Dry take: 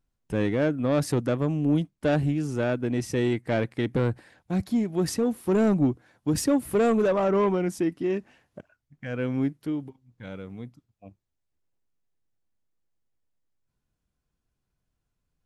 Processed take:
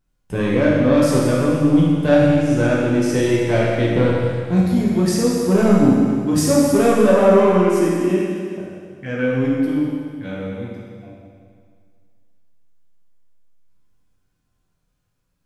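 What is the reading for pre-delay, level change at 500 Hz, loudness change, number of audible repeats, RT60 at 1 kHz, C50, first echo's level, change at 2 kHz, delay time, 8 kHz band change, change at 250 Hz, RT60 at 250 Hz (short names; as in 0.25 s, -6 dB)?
10 ms, +9.5 dB, +9.5 dB, none, 2.0 s, -1.5 dB, none, +9.5 dB, none, +9.5 dB, +9.5 dB, 2.0 s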